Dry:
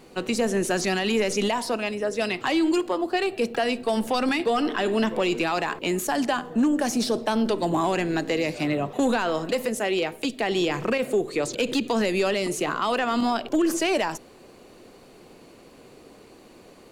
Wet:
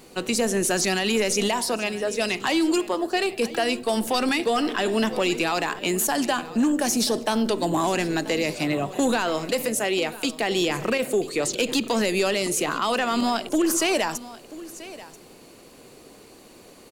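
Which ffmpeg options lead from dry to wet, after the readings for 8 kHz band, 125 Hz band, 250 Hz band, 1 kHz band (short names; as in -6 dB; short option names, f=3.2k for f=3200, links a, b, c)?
+7.5 dB, 0.0 dB, 0.0 dB, +0.5 dB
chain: -af "highshelf=f=4.8k:g=10,aecho=1:1:985:0.133"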